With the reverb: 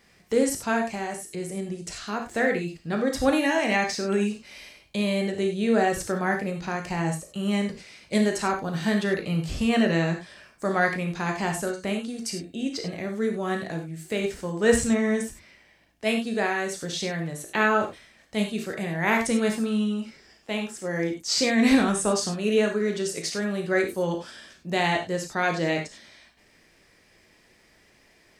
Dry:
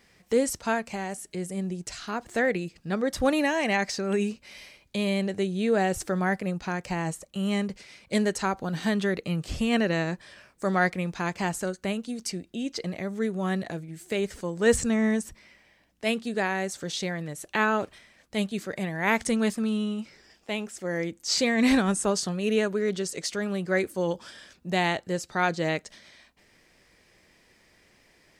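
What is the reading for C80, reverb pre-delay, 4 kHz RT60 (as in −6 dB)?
12.0 dB, 18 ms, can't be measured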